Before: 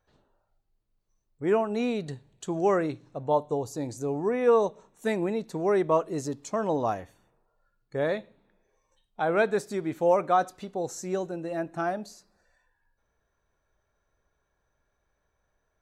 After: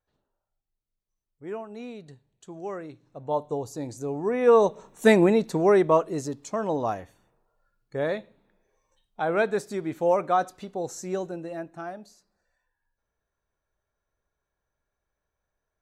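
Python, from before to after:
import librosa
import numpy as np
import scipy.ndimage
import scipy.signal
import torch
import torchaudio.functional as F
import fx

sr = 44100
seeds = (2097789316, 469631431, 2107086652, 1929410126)

y = fx.gain(x, sr, db=fx.line((2.86, -11.0), (3.43, -1.0), (4.17, -1.0), (5.09, 11.0), (6.32, 0.0), (11.33, 0.0), (11.82, -7.5)))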